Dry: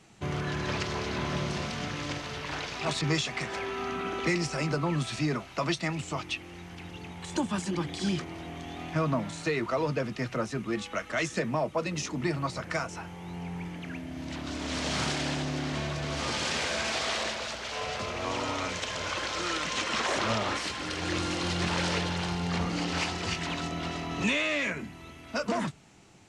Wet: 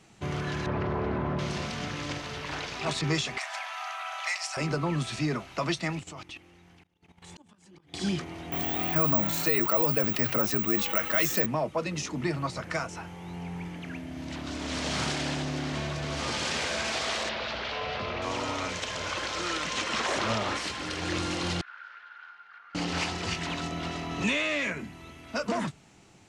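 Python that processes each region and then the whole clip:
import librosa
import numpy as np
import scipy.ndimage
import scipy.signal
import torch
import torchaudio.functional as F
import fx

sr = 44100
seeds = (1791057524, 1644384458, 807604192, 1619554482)

y = fx.chain(x, sr, fx.lowpass(hz=1200.0, slope=12),
    fx.env_flatten(amount_pct=100), at=(0.66, 1.39))
y = fx.chain(y, sr, fx.steep_highpass(hz=600.0, slope=96),
    fx.high_shelf(hz=7000.0, db=5.5), at=(3.38, 4.57))
y = fx.chain(y, sr, fx.level_steps(step_db=14),
    fx.auto_swell(attack_ms=661.0), at=(5.99, 7.94))
y = fx.chain(y, sr, fx.low_shelf(hz=130.0, db=-7.0),
    fx.resample_bad(factor=2, down='filtered', up='zero_stuff'),
    fx.env_flatten(amount_pct=50), at=(8.52, 11.46))
y = fx.chain(y, sr, fx.lowpass(hz=4400.0, slope=24),
    fx.env_flatten(amount_pct=70), at=(17.29, 18.22))
y = fx.chain(y, sr, fx.level_steps(step_db=19),
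    fx.ladder_bandpass(hz=1500.0, resonance_pct=85),
    fx.air_absorb(metres=53.0), at=(21.61, 22.75))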